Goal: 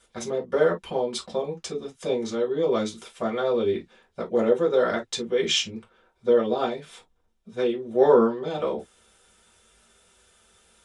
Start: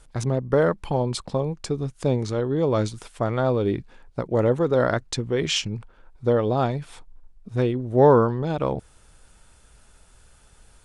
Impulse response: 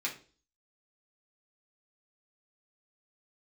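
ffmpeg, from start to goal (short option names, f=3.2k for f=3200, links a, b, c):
-filter_complex "[1:a]atrim=start_sample=2205,atrim=end_sample=4410,asetrate=66150,aresample=44100[a];[0:a][a]afir=irnorm=-1:irlink=0"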